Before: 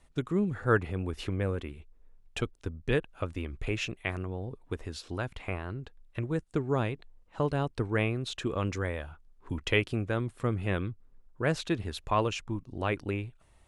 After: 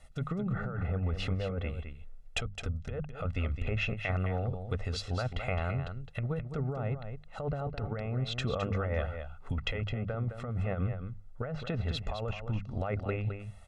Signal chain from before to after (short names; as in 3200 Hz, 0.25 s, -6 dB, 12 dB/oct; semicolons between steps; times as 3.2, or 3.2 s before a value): treble ducked by the level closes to 1400 Hz, closed at -26.5 dBFS; notches 50/100/150/200 Hz; comb 1.5 ms, depth 81%; negative-ratio compressor -32 dBFS, ratio -1; echo 0.213 s -8.5 dB